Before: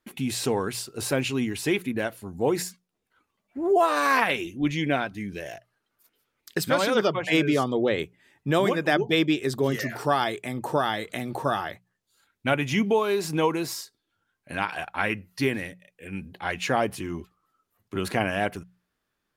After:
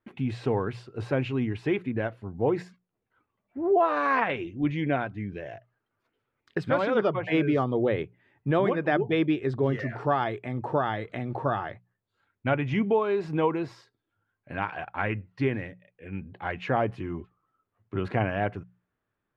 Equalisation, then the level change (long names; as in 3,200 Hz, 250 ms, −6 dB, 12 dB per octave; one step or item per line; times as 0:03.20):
bass and treble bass −4 dB, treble −13 dB
head-to-tape spacing loss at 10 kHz 21 dB
parametric band 110 Hz +11 dB 0.62 octaves
0.0 dB